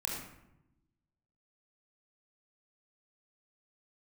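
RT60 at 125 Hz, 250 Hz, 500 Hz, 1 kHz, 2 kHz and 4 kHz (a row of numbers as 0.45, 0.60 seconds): 1.4, 1.3, 0.95, 0.80, 0.70, 0.50 seconds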